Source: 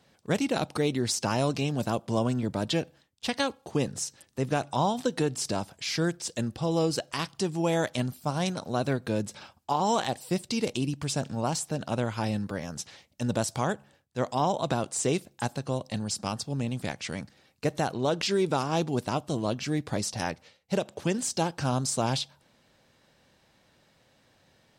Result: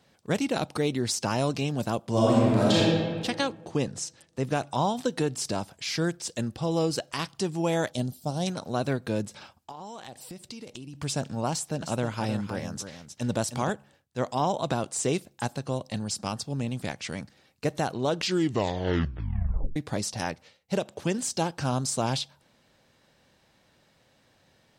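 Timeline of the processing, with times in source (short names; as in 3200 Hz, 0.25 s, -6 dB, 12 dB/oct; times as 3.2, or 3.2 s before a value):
2.1–2.8 reverb throw, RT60 1.7 s, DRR -7 dB
3.36–4.43 LPF 8800 Hz
7.91–8.47 band shelf 1600 Hz -11 dB
9.25–10.95 compressor 16:1, threshold -37 dBFS
11.51–13.7 echo 0.31 s -9 dB
18.21 tape stop 1.55 s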